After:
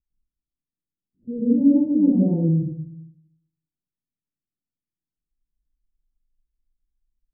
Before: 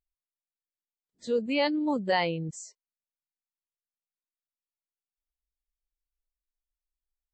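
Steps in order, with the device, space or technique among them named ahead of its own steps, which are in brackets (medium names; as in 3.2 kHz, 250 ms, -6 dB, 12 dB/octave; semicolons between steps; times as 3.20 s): next room (low-pass 300 Hz 24 dB/octave; reverberation RT60 0.75 s, pre-delay 102 ms, DRR -8.5 dB); trim +6 dB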